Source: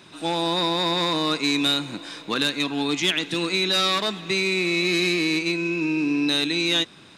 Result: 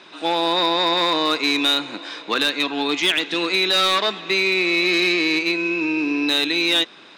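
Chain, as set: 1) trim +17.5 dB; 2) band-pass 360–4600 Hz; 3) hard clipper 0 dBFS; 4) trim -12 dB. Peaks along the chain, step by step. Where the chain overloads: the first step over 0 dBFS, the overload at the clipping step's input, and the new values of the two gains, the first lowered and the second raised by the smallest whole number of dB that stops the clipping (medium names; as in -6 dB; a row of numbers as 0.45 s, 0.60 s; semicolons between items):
+8.0 dBFS, +6.5 dBFS, 0.0 dBFS, -12.0 dBFS; step 1, 6.5 dB; step 1 +10.5 dB, step 4 -5 dB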